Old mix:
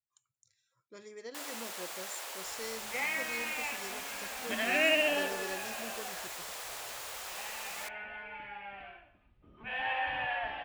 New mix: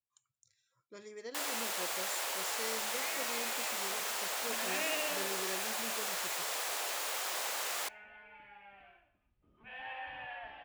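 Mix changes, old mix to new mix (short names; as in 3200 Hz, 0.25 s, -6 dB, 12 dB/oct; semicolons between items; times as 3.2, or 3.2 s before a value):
first sound +5.5 dB; second sound -10.5 dB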